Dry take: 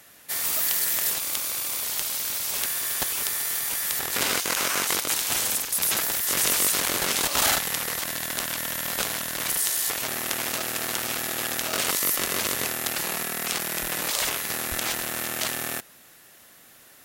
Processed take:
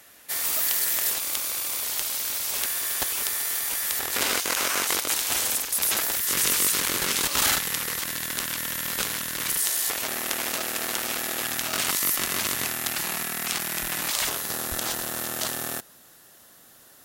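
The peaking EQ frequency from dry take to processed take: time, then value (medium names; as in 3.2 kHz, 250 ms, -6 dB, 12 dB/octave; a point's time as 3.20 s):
peaking EQ -7.5 dB 0.64 oct
150 Hz
from 6.16 s 680 Hz
from 9.63 s 120 Hz
from 11.42 s 490 Hz
from 14.28 s 2.3 kHz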